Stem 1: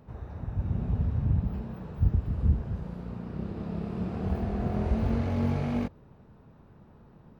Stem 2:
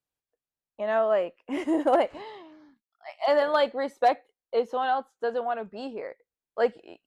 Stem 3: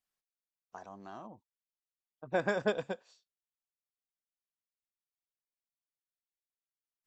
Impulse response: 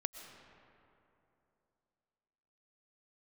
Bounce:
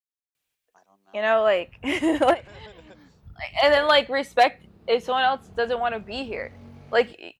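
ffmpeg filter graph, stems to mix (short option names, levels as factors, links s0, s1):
-filter_complex "[0:a]adelay=1250,volume=0.133[s0];[1:a]firequalizer=gain_entry='entry(990,0);entry(2400,8);entry(4700,0)':delay=0.05:min_phase=1,adelay=350,volume=1.41[s1];[2:a]highpass=150,volume=0.299,asplit=2[s2][s3];[s3]apad=whole_len=331266[s4];[s1][s4]sidechaincompress=threshold=0.002:ratio=10:attack=16:release=118[s5];[s0][s2]amix=inputs=2:normalize=0,agate=range=0.398:threshold=0.00126:ratio=16:detection=peak,alimiter=level_in=4.47:limit=0.0631:level=0:latency=1:release=112,volume=0.224,volume=1[s6];[s5][s6]amix=inputs=2:normalize=0,highshelf=f=2500:g=8.5"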